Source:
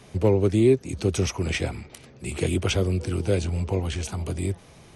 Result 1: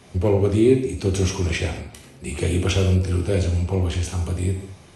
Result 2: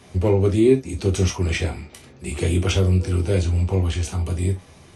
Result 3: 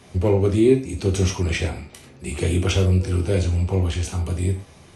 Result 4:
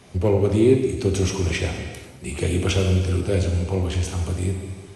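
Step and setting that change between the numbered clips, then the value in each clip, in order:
gated-style reverb, gate: 250 ms, 90 ms, 140 ms, 500 ms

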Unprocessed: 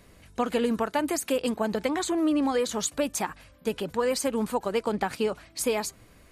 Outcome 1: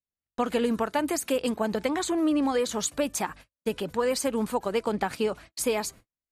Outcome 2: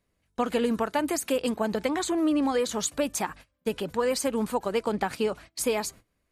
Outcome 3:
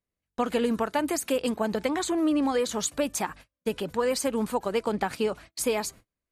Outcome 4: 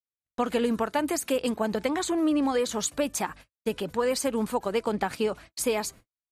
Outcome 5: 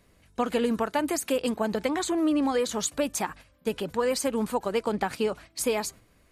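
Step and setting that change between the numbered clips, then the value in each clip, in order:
gate, range: -47 dB, -21 dB, -35 dB, -59 dB, -7 dB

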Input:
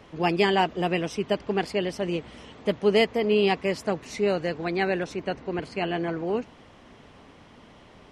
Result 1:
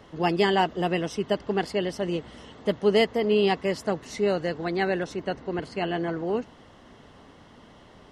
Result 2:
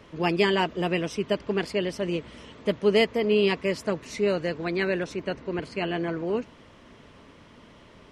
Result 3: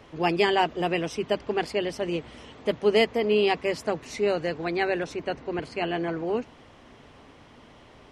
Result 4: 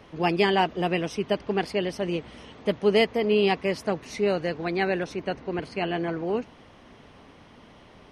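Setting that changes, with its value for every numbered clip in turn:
band-stop, frequency: 2.4 kHz, 770 Hz, 190 Hz, 7.4 kHz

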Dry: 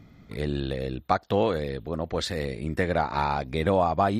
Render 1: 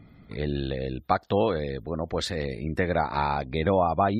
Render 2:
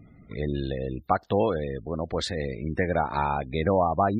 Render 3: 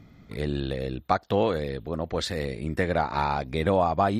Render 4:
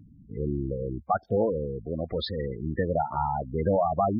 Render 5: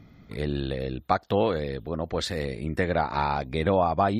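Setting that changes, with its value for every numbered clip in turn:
spectral gate, under each frame's peak: -35 dB, -25 dB, -60 dB, -10 dB, -45 dB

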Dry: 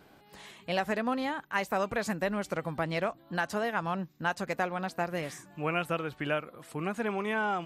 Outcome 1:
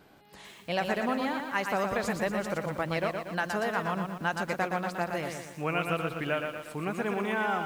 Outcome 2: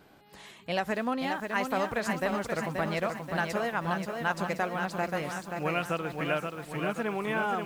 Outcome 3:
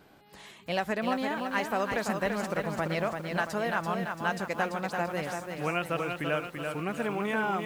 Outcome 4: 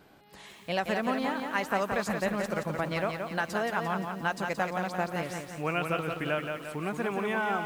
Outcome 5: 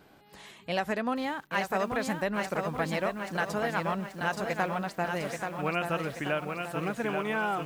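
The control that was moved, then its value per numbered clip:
bit-crushed delay, time: 118 ms, 530 ms, 338 ms, 174 ms, 832 ms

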